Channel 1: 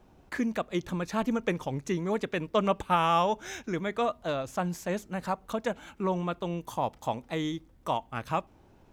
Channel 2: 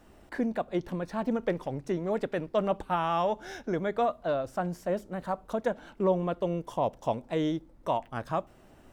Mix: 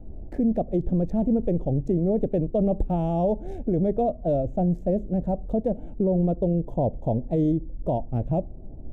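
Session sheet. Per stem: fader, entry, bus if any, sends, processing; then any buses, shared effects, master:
−4.5 dB, 0.00 s, no send, adaptive Wiener filter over 9 samples; parametric band 1,100 Hz −8 dB 3 octaves; brickwall limiter −27 dBFS, peak gain reduction 9 dB; automatic ducking −8 dB, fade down 0.45 s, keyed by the second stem
+2.0 dB, 0.00 s, polarity flipped, no send, Butterworth low-pass 760 Hz 36 dB per octave; spectral tilt −4.5 dB per octave; brickwall limiter −17 dBFS, peak gain reduction 7.5 dB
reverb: not used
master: no processing

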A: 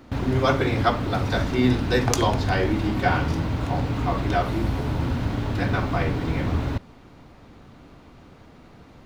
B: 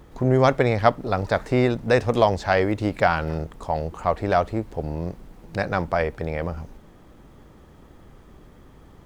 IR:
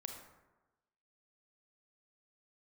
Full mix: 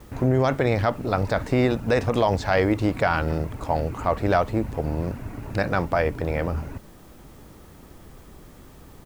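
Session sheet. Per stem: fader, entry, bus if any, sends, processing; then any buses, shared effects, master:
−7.5 dB, 0.00 s, no send, reverb reduction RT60 0.81 s; Butterworth low-pass 2,800 Hz 96 dB per octave
+1.5 dB, 3.6 ms, no send, bit-depth reduction 10 bits, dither triangular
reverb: not used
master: brickwall limiter −10 dBFS, peak gain reduction 8.5 dB

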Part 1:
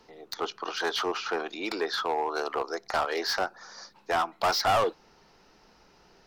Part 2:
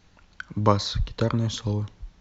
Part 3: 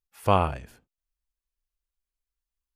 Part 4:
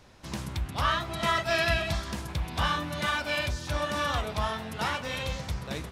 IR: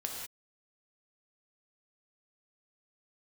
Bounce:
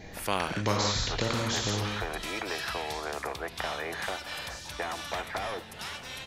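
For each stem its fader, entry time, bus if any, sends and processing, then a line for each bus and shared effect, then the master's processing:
−3.5 dB, 0.70 s, bus A, no send, no processing
+2.5 dB, 0.00 s, bus A, send −10 dB, no processing
−9.5 dB, 0.00 s, no bus, no send, high-pass filter 200 Hz
−14.0 dB, 1.00 s, no bus, send −13 dB, guitar amp tone stack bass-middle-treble 5-5-5
bus A: 0.0 dB, Chebyshev low-pass with heavy ripple 2,500 Hz, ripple 9 dB; downward compressor, threshold −37 dBFS, peak gain reduction 20 dB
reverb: on, pre-delay 3 ms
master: every bin compressed towards the loudest bin 2 to 1

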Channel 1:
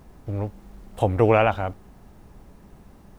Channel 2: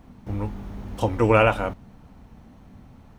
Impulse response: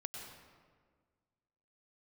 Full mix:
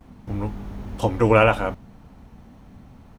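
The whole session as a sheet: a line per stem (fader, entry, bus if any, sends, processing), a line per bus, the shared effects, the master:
−15.5 dB, 0.00 s, no send, no processing
+1.5 dB, 8.7 ms, polarity flipped, no send, no processing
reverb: not used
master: no processing

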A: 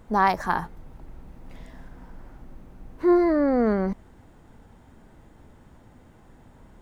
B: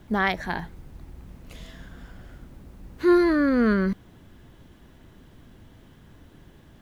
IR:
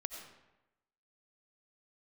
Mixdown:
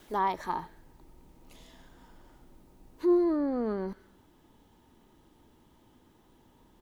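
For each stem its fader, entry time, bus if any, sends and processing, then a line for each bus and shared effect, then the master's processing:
−5.0 dB, 0.00 s, no send, Chebyshev low-pass with heavy ripple 1,300 Hz, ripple 9 dB
−4.0 dB, 0.7 ms, send −15.5 dB, high-pass filter 270 Hz 24 dB per octave; brickwall limiter −17.5 dBFS, peak gain reduction 9.5 dB; downward compressor, threshold −30 dBFS, peak gain reduction 9 dB; automatic ducking −19 dB, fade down 0.75 s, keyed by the first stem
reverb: on, RT60 1.0 s, pre-delay 50 ms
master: high-shelf EQ 2,600 Hz +11.5 dB

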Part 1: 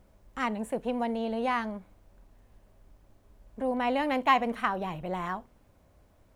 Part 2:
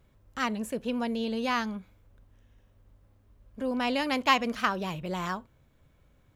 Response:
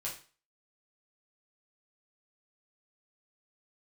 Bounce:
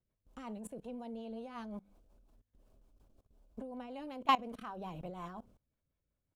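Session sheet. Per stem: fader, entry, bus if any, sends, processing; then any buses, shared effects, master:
+1.5 dB, 0.00 s, no send, noise gate with hold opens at −49 dBFS; parametric band 1,900 Hz −12.5 dB 0.49 octaves; mains-hum notches 50/100/150/200 Hz
−9.5 dB, 4 ms, no send, high-shelf EQ 2,600 Hz −5 dB; downward compressor 2 to 1, threshold −38 dBFS, peak gain reduction 11 dB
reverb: not used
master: output level in coarse steps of 21 dB; rotating-speaker cabinet horn 5.5 Hz

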